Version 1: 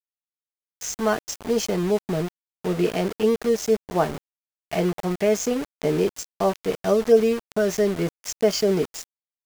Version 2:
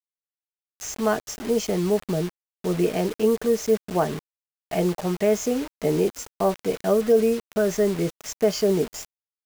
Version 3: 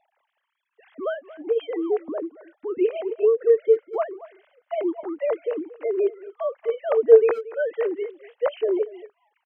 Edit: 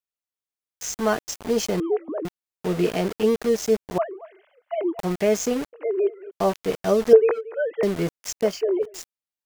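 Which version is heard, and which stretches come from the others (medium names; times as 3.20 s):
1
1.80–2.25 s: from 3
3.98–4.99 s: from 3
5.73–6.31 s: from 3
7.13–7.83 s: from 3
8.51–8.92 s: from 3, crossfade 0.24 s
not used: 2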